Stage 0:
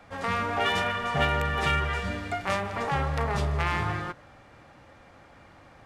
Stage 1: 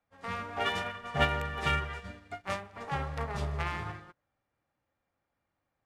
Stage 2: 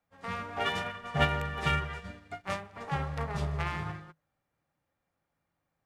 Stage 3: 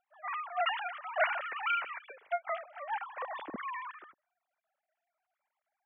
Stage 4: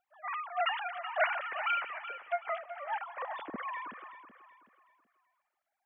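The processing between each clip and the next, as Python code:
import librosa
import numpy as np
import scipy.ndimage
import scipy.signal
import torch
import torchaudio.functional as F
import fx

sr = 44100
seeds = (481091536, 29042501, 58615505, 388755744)

y1 = fx.upward_expand(x, sr, threshold_db=-42.0, expansion=2.5)
y2 = fx.peak_eq(y1, sr, hz=160.0, db=8.5, octaves=0.25)
y3 = fx.sine_speech(y2, sr)
y3 = F.gain(torch.from_numpy(y3), -3.0).numpy()
y4 = fx.echo_feedback(y3, sr, ms=377, feedback_pct=37, wet_db=-12.0)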